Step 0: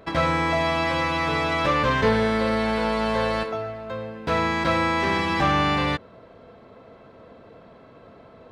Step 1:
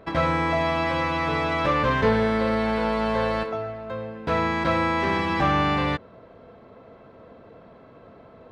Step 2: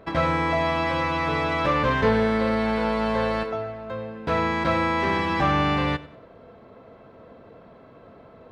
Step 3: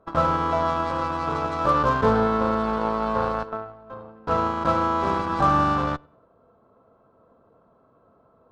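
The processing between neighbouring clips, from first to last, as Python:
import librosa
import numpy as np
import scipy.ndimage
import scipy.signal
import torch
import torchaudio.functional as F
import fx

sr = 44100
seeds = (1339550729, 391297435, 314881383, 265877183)

y1 = fx.high_shelf(x, sr, hz=3700.0, db=-8.5)
y2 = fx.echo_feedback(y1, sr, ms=95, feedback_pct=36, wet_db=-19.0)
y3 = fx.cheby_harmonics(y2, sr, harmonics=(3, 5, 7, 8), levels_db=(-31, -24, -17, -28), full_scale_db=-9.5)
y3 = fx.high_shelf_res(y3, sr, hz=1600.0, db=-7.0, q=3.0)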